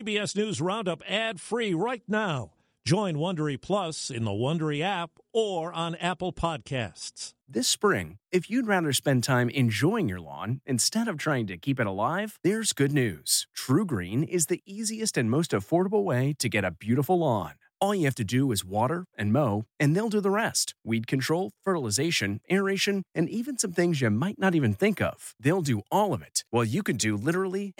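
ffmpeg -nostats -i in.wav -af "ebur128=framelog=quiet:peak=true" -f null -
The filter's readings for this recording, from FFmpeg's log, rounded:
Integrated loudness:
  I:         -27.1 LUFS
  Threshold: -37.2 LUFS
Loudness range:
  LRA:         3.0 LU
  Threshold: -47.1 LUFS
  LRA low:   -29.1 LUFS
  LRA high:  -26.1 LUFS
True peak:
  Peak:      -10.8 dBFS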